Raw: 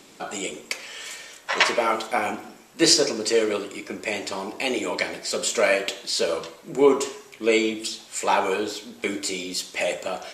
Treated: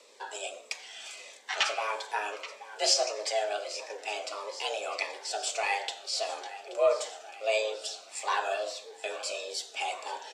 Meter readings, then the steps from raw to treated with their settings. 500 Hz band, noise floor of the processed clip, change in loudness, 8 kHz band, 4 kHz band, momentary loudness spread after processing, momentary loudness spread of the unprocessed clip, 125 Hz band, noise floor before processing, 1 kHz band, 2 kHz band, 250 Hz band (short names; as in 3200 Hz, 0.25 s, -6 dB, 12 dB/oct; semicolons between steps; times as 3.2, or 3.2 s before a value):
-8.5 dB, -51 dBFS, -8.0 dB, -7.5 dB, -6.5 dB, 12 LU, 13 LU, under -30 dB, -49 dBFS, -5.5 dB, -8.0 dB, -27.0 dB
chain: frequency shift +210 Hz; feedback echo 0.828 s, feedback 59%, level -16 dB; soft clip -3 dBFS, distortion -30 dB; LPF 7600 Hz 12 dB/oct; bell 170 Hz -2.5 dB 0.98 oct; cascading phaser falling 1.6 Hz; gain -5.5 dB